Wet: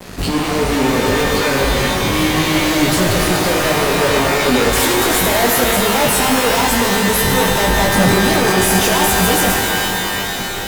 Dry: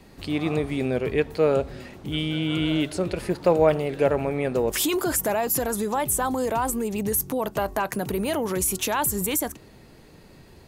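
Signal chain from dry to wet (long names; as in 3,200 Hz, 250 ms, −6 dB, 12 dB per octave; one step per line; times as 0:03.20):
fuzz pedal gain 44 dB, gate −48 dBFS
multi-voice chorus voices 4, 1.4 Hz, delay 19 ms, depth 3 ms
reverb with rising layers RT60 3.9 s, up +12 semitones, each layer −2 dB, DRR 1.5 dB
level −1 dB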